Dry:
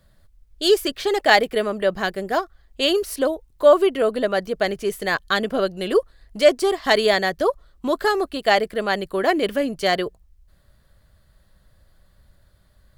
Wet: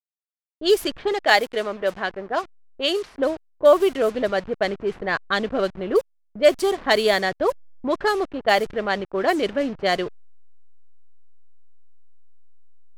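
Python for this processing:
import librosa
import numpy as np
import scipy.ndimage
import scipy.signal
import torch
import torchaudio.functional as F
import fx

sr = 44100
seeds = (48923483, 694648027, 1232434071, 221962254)

y = fx.delta_hold(x, sr, step_db=-32.0)
y = fx.env_lowpass(y, sr, base_hz=380.0, full_db=-14.0)
y = fx.low_shelf(y, sr, hz=280.0, db=-9.0, at=(1.12, 3.15))
y = y * librosa.db_to_amplitude(-1.0)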